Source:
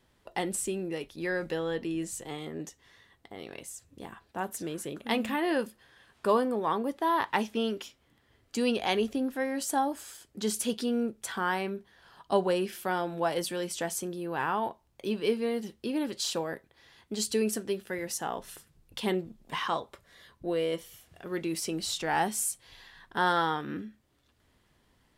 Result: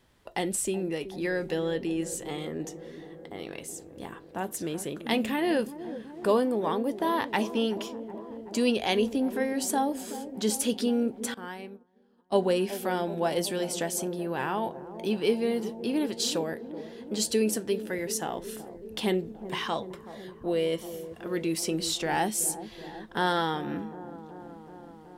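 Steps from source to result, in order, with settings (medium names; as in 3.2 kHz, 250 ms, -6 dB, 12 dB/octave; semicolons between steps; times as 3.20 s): dynamic bell 1.2 kHz, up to -7 dB, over -44 dBFS, Q 1.4; feedback echo behind a low-pass 376 ms, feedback 74%, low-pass 770 Hz, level -12 dB; 11.34–12.35 s: upward expansion 2.5:1, over -43 dBFS; trim +3 dB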